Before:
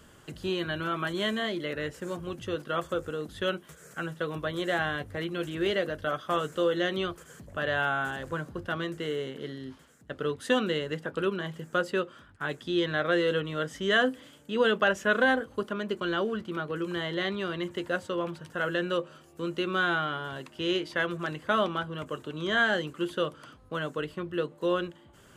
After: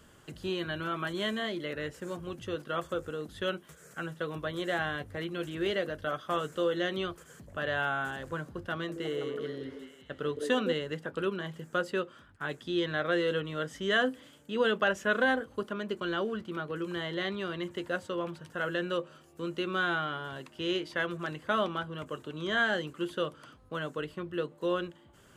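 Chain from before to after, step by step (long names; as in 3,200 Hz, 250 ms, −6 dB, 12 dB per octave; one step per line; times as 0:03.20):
0:08.72–0:10.73: echo through a band-pass that steps 163 ms, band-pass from 360 Hz, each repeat 0.7 octaves, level −2 dB
level −3 dB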